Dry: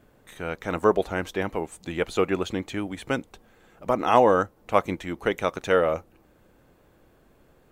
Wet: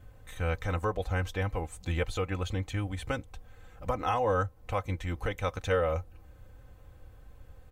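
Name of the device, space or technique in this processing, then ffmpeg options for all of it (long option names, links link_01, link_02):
car stereo with a boomy subwoofer: -af "lowshelf=frequency=160:width_type=q:width=3:gain=12,alimiter=limit=-16dB:level=0:latency=1:release=472,aecho=1:1:3.9:0.71,volume=-3dB"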